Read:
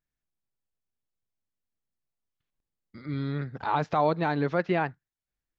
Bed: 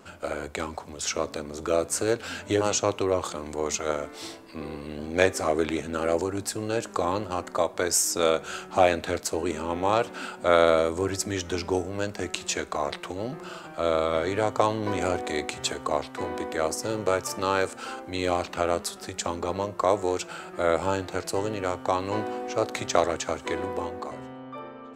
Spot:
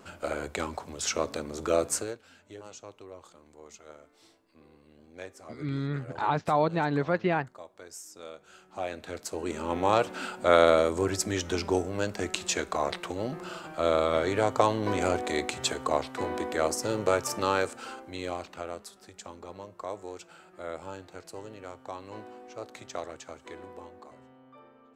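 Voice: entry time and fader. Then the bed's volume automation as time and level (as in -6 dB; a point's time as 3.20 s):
2.55 s, -0.5 dB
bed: 1.94 s -1 dB
2.23 s -21.5 dB
8.36 s -21.5 dB
9.76 s -0.5 dB
17.41 s -0.5 dB
18.89 s -14.5 dB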